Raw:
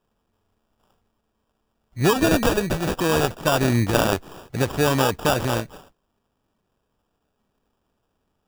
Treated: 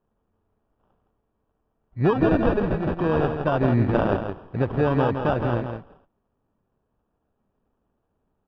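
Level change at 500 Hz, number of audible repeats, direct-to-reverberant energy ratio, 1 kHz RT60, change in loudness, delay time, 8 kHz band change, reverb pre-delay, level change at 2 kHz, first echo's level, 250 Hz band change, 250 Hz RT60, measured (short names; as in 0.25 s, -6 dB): -0.5 dB, 1, none, none, -1.5 dB, 0.164 s, under -35 dB, none, -6.0 dB, -7.0 dB, 0.0 dB, none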